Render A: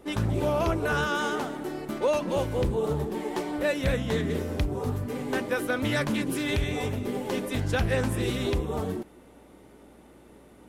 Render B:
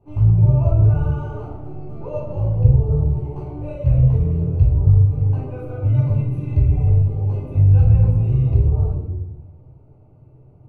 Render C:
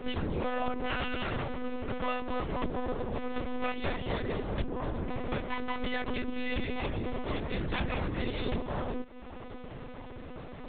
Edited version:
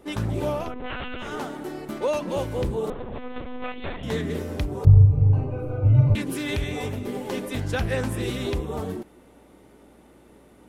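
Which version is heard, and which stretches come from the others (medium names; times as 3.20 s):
A
0.63–1.30 s: from C, crossfade 0.24 s
2.90–4.03 s: from C
4.85–6.15 s: from B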